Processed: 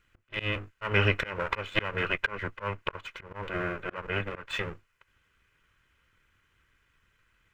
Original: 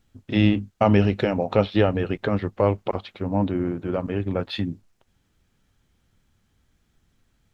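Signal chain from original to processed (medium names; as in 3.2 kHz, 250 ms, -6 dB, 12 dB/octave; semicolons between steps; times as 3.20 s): comb filter that takes the minimum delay 2 ms; slow attack 260 ms; high-order bell 1.8 kHz +13.5 dB; trim -5 dB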